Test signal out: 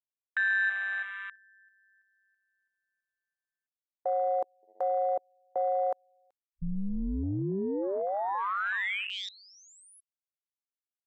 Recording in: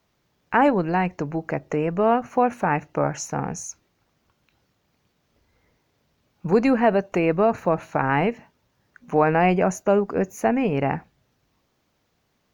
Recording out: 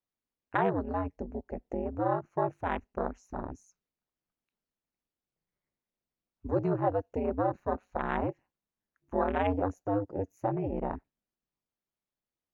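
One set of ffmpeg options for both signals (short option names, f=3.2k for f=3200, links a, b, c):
-filter_complex "[0:a]acrossover=split=2600[a][b];[b]acompressor=threshold=-31dB:ratio=4:attack=1:release=60[c];[a][c]amix=inputs=2:normalize=0,aeval=exprs='val(0)*sin(2*PI*97*n/s)':c=same,afwtdn=0.0447,volume=-7dB"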